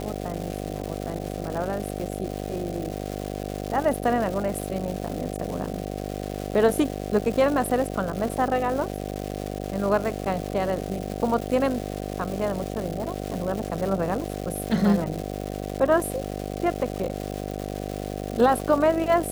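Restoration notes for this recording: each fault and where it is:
buzz 50 Hz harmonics 15 -32 dBFS
crackle 460/s -30 dBFS

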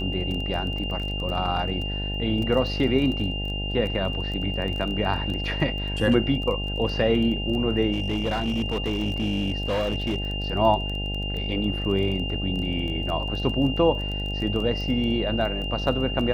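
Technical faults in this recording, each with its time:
buzz 50 Hz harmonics 17 -30 dBFS
crackle 16/s -30 dBFS
tone 2800 Hz -31 dBFS
7.92–10.34 clipped -21 dBFS

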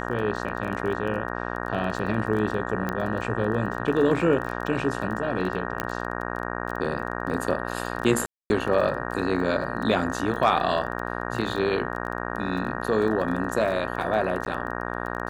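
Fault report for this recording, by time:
buzz 60 Hz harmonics 31 -31 dBFS
crackle 20/s -31 dBFS
2.89 pop -15 dBFS
5.8 pop -11 dBFS
8.26–8.5 gap 0.241 s
14.45–14.46 gap 10 ms

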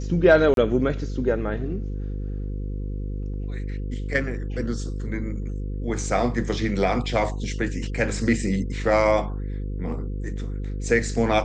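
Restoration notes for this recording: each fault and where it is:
buzz 50 Hz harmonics 10 -29 dBFS
0.54–0.57 gap 32 ms

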